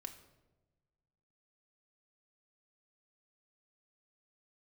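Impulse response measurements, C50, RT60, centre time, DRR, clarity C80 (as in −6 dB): 11.0 dB, 1.1 s, 12 ms, 4.0 dB, 13.5 dB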